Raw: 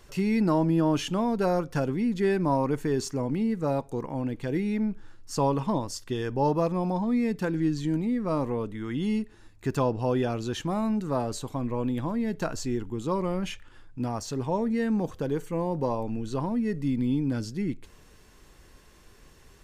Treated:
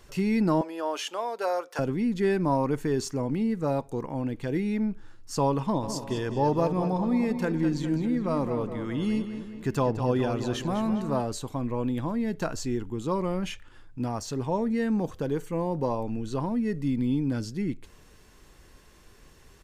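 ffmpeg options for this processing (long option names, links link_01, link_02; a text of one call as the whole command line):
ffmpeg -i in.wav -filter_complex "[0:a]asettb=1/sr,asplit=3[link_01][link_02][link_03];[link_01]atrim=end=0.614[link_04];[link_02]atrim=start=0.61:end=1.79,asetpts=PTS-STARTPTS,afade=type=in:duration=0.004:curve=qsin,afade=type=out:start_time=1.176:duration=0.004:curve=qsin,highpass=frequency=470:width=0.5412,highpass=frequency=470:width=1.3066[link_05];[link_03]atrim=start=1.786[link_06];[link_04][link_05]acrossfade=duration=0.004:curve1=hsin:curve2=qsin[link_07];[link_07][link_06]acrossfade=duration=0.004:curve1=qsin:curve2=hsin,asplit=3[link_08][link_09][link_10];[link_08]afade=type=out:start_time=5.82:duration=0.02[link_11];[link_09]asplit=2[link_12][link_13];[link_13]adelay=204,lowpass=frequency=4700:poles=1,volume=-9dB,asplit=2[link_14][link_15];[link_15]adelay=204,lowpass=frequency=4700:poles=1,volume=0.55,asplit=2[link_16][link_17];[link_17]adelay=204,lowpass=frequency=4700:poles=1,volume=0.55,asplit=2[link_18][link_19];[link_19]adelay=204,lowpass=frequency=4700:poles=1,volume=0.55,asplit=2[link_20][link_21];[link_21]adelay=204,lowpass=frequency=4700:poles=1,volume=0.55,asplit=2[link_22][link_23];[link_23]adelay=204,lowpass=frequency=4700:poles=1,volume=0.55[link_24];[link_12][link_14][link_16][link_18][link_20][link_22][link_24]amix=inputs=7:normalize=0,afade=type=in:start_time=5.82:duration=0.02,afade=type=out:start_time=11.2:duration=0.02[link_25];[link_10]afade=type=in:start_time=11.2:duration=0.02[link_26];[link_11][link_25][link_26]amix=inputs=3:normalize=0" out.wav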